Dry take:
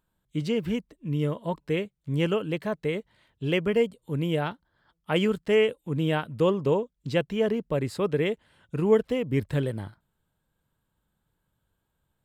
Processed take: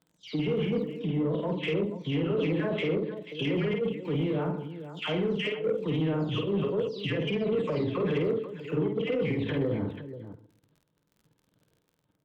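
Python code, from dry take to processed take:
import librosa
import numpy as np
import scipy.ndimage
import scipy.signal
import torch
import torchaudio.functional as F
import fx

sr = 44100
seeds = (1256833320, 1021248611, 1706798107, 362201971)

y = fx.spec_delay(x, sr, highs='early', ms=303)
y = fx.over_compress(y, sr, threshold_db=-28.0, ratio=-0.5)
y = fx.rev_fdn(y, sr, rt60_s=0.72, lf_ratio=1.2, hf_ratio=0.7, size_ms=20.0, drr_db=12.0)
y = fx.level_steps(y, sr, step_db=12)
y = fx.cabinet(y, sr, low_hz=190.0, low_slope=12, high_hz=4200.0, hz=(220.0, 450.0, 820.0, 1600.0), db=(-3, 4, -5, -4))
y = fx.dmg_crackle(y, sr, seeds[0], per_s=22.0, level_db=-54.0)
y = fx.low_shelf(y, sr, hz=320.0, db=11.5)
y = fx.echo_multitap(y, sr, ms=(50, 123, 487), db=(-3.5, -14.0, -12.5))
y = fx.cheby_harmonics(y, sr, harmonics=(5,), levels_db=(-23,), full_scale_db=-19.0)
y = y * librosa.db_to_amplitude(1.5)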